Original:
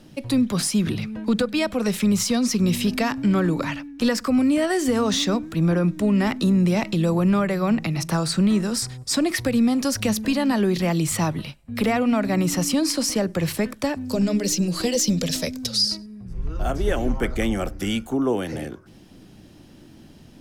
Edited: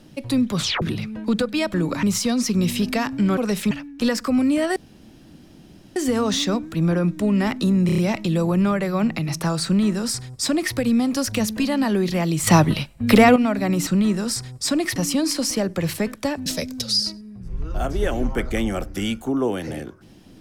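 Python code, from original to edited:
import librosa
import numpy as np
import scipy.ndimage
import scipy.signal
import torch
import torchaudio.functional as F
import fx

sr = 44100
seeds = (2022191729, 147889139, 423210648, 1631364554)

y = fx.edit(x, sr, fx.tape_stop(start_s=0.57, length_s=0.25),
    fx.swap(start_s=1.74, length_s=0.34, other_s=3.42, other_length_s=0.29),
    fx.insert_room_tone(at_s=4.76, length_s=1.2),
    fx.stutter(start_s=6.66, slice_s=0.03, count=5),
    fx.duplicate(start_s=8.33, length_s=1.09, to_s=12.55),
    fx.clip_gain(start_s=11.15, length_s=0.89, db=9.0),
    fx.cut(start_s=14.05, length_s=1.26), tone=tone)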